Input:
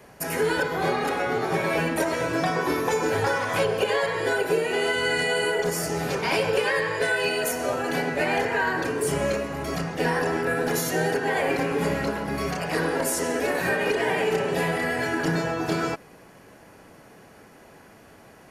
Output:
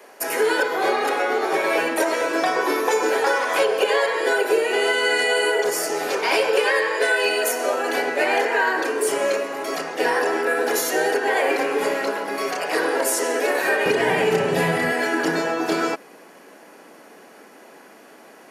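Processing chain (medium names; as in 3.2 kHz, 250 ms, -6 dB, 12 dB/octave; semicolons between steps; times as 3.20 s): high-pass 320 Hz 24 dB/octave, from 13.86 s 95 Hz, from 14.92 s 240 Hz; trim +4.5 dB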